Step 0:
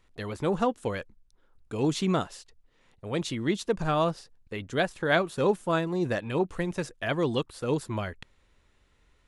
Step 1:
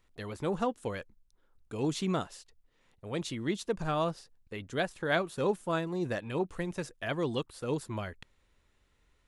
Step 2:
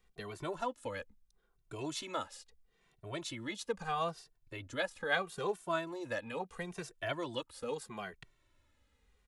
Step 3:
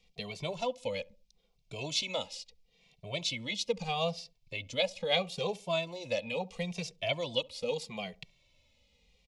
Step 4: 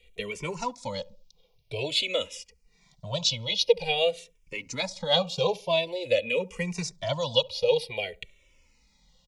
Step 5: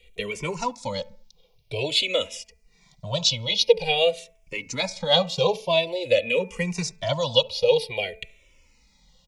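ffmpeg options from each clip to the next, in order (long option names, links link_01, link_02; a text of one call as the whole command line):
ffmpeg -i in.wav -af "highshelf=frequency=9600:gain=4.5,volume=-5dB" out.wav
ffmpeg -i in.wav -filter_complex "[0:a]acrossover=split=480|770[link_01][link_02][link_03];[link_01]acompressor=threshold=-43dB:ratio=6[link_04];[link_04][link_02][link_03]amix=inputs=3:normalize=0,asplit=2[link_05][link_06];[link_06]adelay=2.1,afreqshift=-0.76[link_07];[link_05][link_07]amix=inputs=2:normalize=1,volume=1dB" out.wav
ffmpeg -i in.wav -filter_complex "[0:a]firequalizer=gain_entry='entry(100,0);entry(180,8);entry(340,-10);entry(500,7);entry(1600,-17);entry(2200,9);entry(5100,11);entry(8900,-4)':delay=0.05:min_phase=1,asplit=2[link_01][link_02];[link_02]adelay=69,lowpass=frequency=880:poles=1,volume=-21dB,asplit=2[link_03][link_04];[link_04]adelay=69,lowpass=frequency=880:poles=1,volume=0.39,asplit=2[link_05][link_06];[link_06]adelay=69,lowpass=frequency=880:poles=1,volume=0.39[link_07];[link_01][link_03][link_05][link_07]amix=inputs=4:normalize=0,volume=1dB" out.wav
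ffmpeg -i in.wav -filter_complex "[0:a]aecho=1:1:2.1:0.38,asplit=2[link_01][link_02];[link_02]afreqshift=-0.49[link_03];[link_01][link_03]amix=inputs=2:normalize=1,volume=9dB" out.wav
ffmpeg -i in.wav -af "bandreject=frequency=219.9:width_type=h:width=4,bandreject=frequency=439.8:width_type=h:width=4,bandreject=frequency=659.7:width_type=h:width=4,bandreject=frequency=879.6:width_type=h:width=4,bandreject=frequency=1099.5:width_type=h:width=4,bandreject=frequency=1319.4:width_type=h:width=4,bandreject=frequency=1539.3:width_type=h:width=4,bandreject=frequency=1759.2:width_type=h:width=4,bandreject=frequency=1979.1:width_type=h:width=4,bandreject=frequency=2199:width_type=h:width=4,bandreject=frequency=2418.9:width_type=h:width=4,bandreject=frequency=2638.8:width_type=h:width=4,volume=4dB" out.wav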